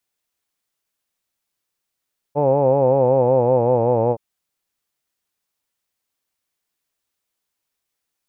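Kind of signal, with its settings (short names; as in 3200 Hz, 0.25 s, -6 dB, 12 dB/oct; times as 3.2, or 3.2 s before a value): formant vowel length 1.82 s, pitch 141 Hz, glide -3.5 st, F1 520 Hz, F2 870 Hz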